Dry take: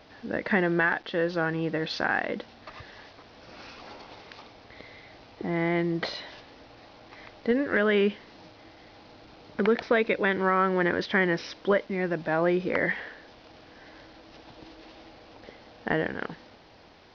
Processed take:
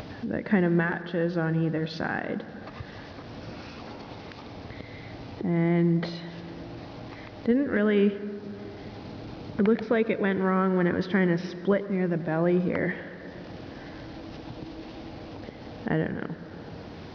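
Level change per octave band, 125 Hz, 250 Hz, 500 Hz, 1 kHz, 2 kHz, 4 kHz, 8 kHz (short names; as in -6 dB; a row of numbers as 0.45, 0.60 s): +7.0 dB, +4.0 dB, -0.5 dB, -3.5 dB, -5.0 dB, -4.5 dB, n/a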